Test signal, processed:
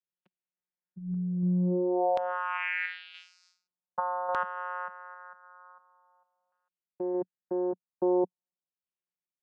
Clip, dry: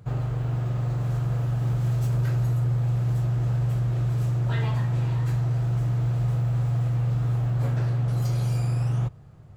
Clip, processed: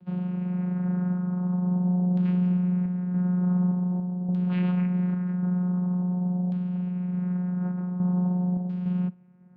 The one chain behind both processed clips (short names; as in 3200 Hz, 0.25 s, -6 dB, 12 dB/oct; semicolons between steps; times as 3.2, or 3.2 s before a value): vocoder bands 8, saw 180 Hz; random-step tremolo; LFO low-pass saw down 0.46 Hz 670–3600 Hz; gain +1.5 dB